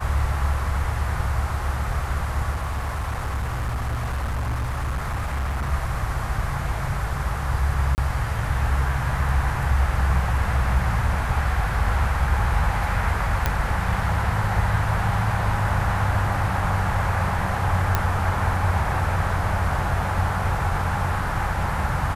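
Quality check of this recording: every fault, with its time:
0:02.53–0:05.72: clipping −22 dBFS
0:07.95–0:07.98: drop-out 29 ms
0:13.46: click −6 dBFS
0:17.95: click −6 dBFS

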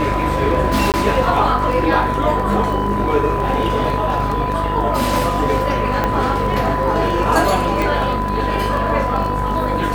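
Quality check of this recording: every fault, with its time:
mains buzz 50 Hz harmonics 39 −23 dBFS
surface crackle 13 per second
whistle 1,000 Hz −21 dBFS
0:00.92–0:00.94: drop-out 18 ms
0:06.04: click −6 dBFS
0:07.82: click

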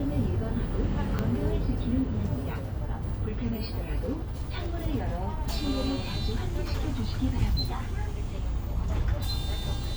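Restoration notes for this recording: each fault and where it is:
0:01.19: click −15 dBFS

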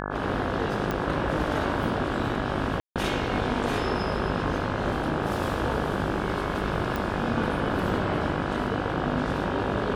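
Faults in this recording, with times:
mains buzz 50 Hz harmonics 34 −32 dBFS
0:00.91: click −14 dBFS
0:02.80–0:02.96: drop-out 157 ms
0:06.96: click

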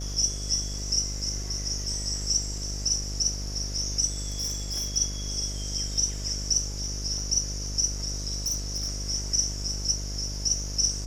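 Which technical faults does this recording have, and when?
mains buzz 50 Hz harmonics 14 −34 dBFS
surface crackle 10 per second −37 dBFS
0:04.30–0:04.97: clipping −26 dBFS
0:08.38–0:09.10: clipping −24 dBFS

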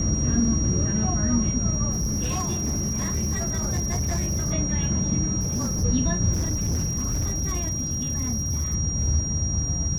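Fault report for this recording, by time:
whistle 5,700 Hz −28 dBFS
0:01.91–0:04.53: clipping −21.5 dBFS
0:05.40–0:05.85: clipping −22 dBFS
0:06.33–0:08.75: clipping −21.5 dBFS

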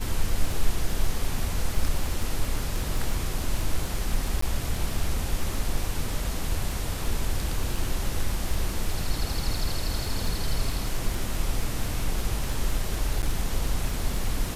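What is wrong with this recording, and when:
surface crackle 16 per second −27 dBFS
0:04.41–0:04.42: drop-out 14 ms
0:13.22–0:13.23: drop-out 9.3 ms

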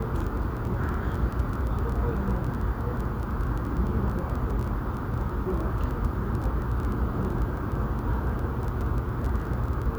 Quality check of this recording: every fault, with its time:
surface crackle 16 per second −30 dBFS

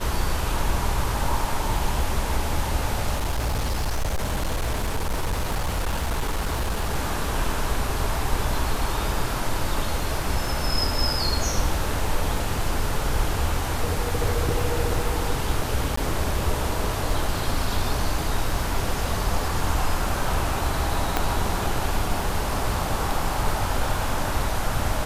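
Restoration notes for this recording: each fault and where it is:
surface crackle 17 per second −30 dBFS
0:03.14–0:06.96: clipping −20.5 dBFS
0:15.96–0:15.97: drop-out 14 ms
0:21.17: click −6 dBFS

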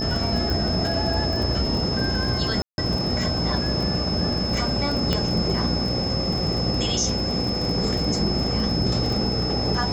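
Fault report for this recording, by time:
mains buzz 60 Hz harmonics 14 −29 dBFS
surface crackle 28 per second −27 dBFS
whistle 5,200 Hz −27 dBFS
0:00.50: click
0:02.62–0:02.78: drop-out 161 ms
0:05.13: click −8 dBFS

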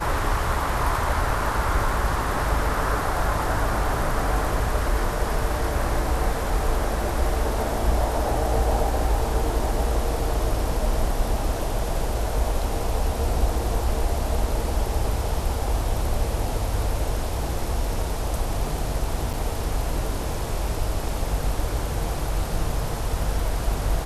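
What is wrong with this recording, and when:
0:19.33–0:19.34: drop-out 6.8 ms

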